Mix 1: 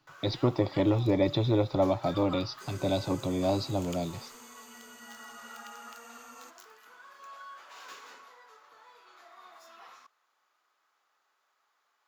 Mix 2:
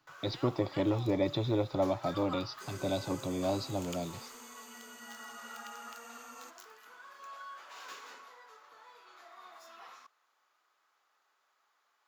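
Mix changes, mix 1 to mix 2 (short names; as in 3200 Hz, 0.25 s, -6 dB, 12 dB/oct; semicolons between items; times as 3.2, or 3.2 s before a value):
speech -4.0 dB; master: add low shelf 130 Hz -3.5 dB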